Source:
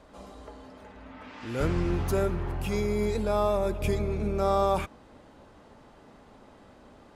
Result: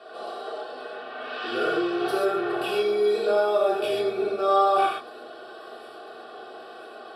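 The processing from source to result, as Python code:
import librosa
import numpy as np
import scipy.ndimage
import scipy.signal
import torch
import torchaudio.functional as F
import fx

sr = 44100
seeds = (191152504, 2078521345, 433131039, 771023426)

p1 = scipy.signal.sosfilt(scipy.signal.butter(6, 190.0, 'highpass', fs=sr, output='sos'), x)
p2 = fx.high_shelf(p1, sr, hz=4700.0, db=6.0)
p3 = p2 + 0.9 * np.pad(p2, (int(2.7 * sr / 1000.0), 0))[:len(p2)]
p4 = fx.over_compress(p3, sr, threshold_db=-36.0, ratio=-1.0)
p5 = p3 + (p4 * librosa.db_to_amplitude(-3.0))
p6 = fx.air_absorb(p5, sr, metres=75.0)
p7 = fx.fixed_phaser(p6, sr, hz=1400.0, stages=8)
p8 = p7 + fx.echo_wet_highpass(p7, sr, ms=995, feedback_pct=63, hz=4900.0, wet_db=-16.0, dry=0)
y = fx.rev_gated(p8, sr, seeds[0], gate_ms=160, shape='flat', drr_db=-4.5)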